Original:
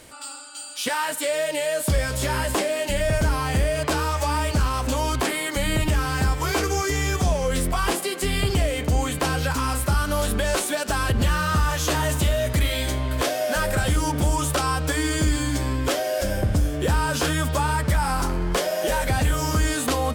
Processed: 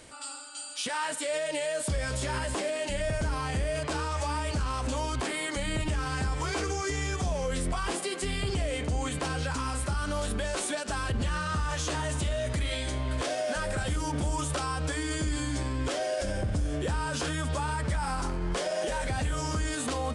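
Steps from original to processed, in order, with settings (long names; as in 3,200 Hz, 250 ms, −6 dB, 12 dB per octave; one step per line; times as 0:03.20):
downsampling to 22,050 Hz
brickwall limiter −19 dBFS, peak gain reduction 7.5 dB
level −3.5 dB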